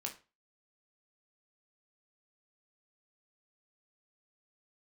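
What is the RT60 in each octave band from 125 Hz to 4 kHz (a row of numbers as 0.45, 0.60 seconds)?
0.35, 0.30, 0.30, 0.30, 0.30, 0.25 seconds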